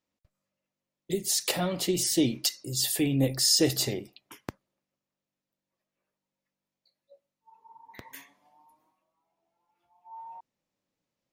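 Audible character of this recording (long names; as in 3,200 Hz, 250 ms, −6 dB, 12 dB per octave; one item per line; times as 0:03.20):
background noise floor −89 dBFS
spectral slope −3.5 dB per octave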